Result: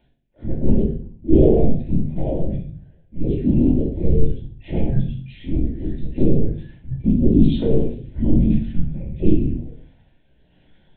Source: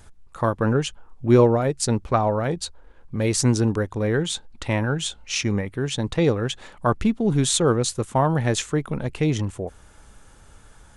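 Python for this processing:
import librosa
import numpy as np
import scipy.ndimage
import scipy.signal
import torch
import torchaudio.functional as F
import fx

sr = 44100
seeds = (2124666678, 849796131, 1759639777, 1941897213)

p1 = fx.hpss_only(x, sr, part='harmonic')
p2 = scipy.signal.sosfilt(scipy.signal.butter(4, 120.0, 'highpass', fs=sr, output='sos'), p1)
p3 = fx.peak_eq(p2, sr, hz=290.0, db=6.5, octaves=0.31)
p4 = np.clip(p3, -10.0 ** (-20.5 / 20.0), 10.0 ** (-20.5 / 20.0))
p5 = p3 + F.gain(torch.from_numpy(p4), -7.0).numpy()
p6 = fx.env_flanger(p5, sr, rest_ms=10.9, full_db=-18.0)
p7 = fx.rotary(p6, sr, hz=1.0)
p8 = fx.lpc_vocoder(p7, sr, seeds[0], excitation='whisper', order=8)
p9 = fx.fixed_phaser(p8, sr, hz=2900.0, stages=4)
p10 = p9 + fx.room_flutter(p9, sr, wall_m=11.5, rt60_s=0.35, dry=0)
p11 = fx.room_shoebox(p10, sr, seeds[1], volume_m3=380.0, walls='furnished', distance_m=2.6)
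y = F.gain(torch.from_numpy(p11), -1.5).numpy()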